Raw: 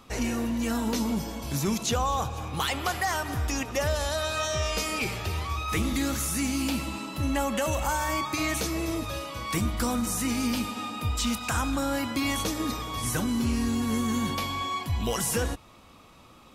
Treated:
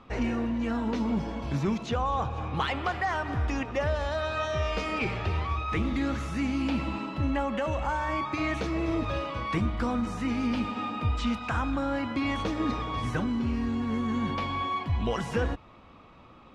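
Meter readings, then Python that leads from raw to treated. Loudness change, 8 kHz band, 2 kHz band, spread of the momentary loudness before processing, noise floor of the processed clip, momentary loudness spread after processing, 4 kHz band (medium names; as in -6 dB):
-1.5 dB, -19.0 dB, -1.5 dB, 4 LU, -52 dBFS, 2 LU, -7.0 dB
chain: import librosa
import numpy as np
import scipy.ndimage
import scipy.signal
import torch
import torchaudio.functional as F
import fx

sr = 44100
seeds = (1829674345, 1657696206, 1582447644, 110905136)

y = scipy.signal.sosfilt(scipy.signal.butter(2, 2500.0, 'lowpass', fs=sr, output='sos'), x)
y = fx.rider(y, sr, range_db=10, speed_s=0.5)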